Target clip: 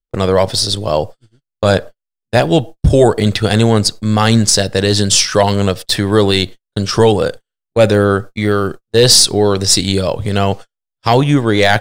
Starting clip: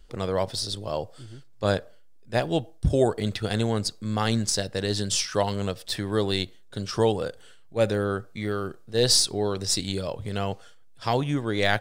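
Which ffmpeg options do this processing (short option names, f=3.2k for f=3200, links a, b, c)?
-af "apsyclip=16.5dB,agate=range=-49dB:threshold=-21dB:ratio=16:detection=peak,volume=-2dB"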